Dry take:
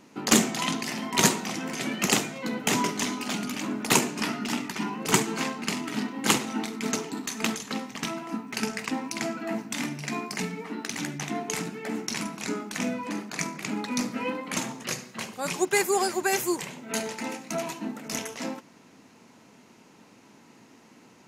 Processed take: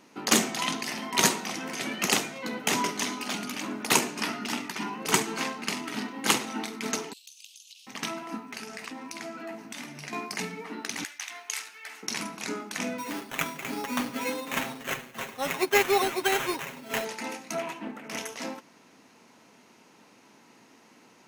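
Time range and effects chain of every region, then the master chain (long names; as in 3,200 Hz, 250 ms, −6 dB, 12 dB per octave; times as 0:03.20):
0:07.13–0:07.87: Butterworth high-pass 2,700 Hz 72 dB per octave + downward compressor 5 to 1, threshold −46 dBFS
0:08.39–0:10.13: downward compressor 5 to 1, threshold −34 dBFS + double-tracking delay 12 ms −12 dB
0:11.04–0:12.03: high-pass filter 1,500 Hz + floating-point word with a short mantissa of 4 bits
0:12.98–0:17.05: sample-rate reduction 4,700 Hz + comb filter 7.4 ms, depth 56%
0:17.58–0:18.18: high-pass filter 110 Hz 24 dB per octave + high shelf with overshoot 3,400 Hz −6.5 dB, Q 1.5 + highs frequency-modulated by the lows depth 0.21 ms
whole clip: low-shelf EQ 240 Hz −9.5 dB; notch filter 7,300 Hz, Q 11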